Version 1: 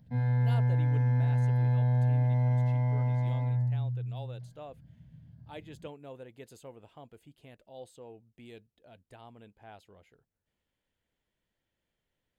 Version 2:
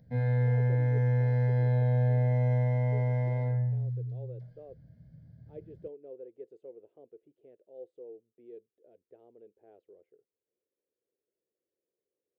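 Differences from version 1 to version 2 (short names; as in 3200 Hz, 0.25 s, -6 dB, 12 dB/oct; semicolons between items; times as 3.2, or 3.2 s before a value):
speech: add band-pass 380 Hz, Q 3.7; master: add ten-band EQ 250 Hz -3 dB, 500 Hz +11 dB, 1000 Hz -7 dB, 2000 Hz +5 dB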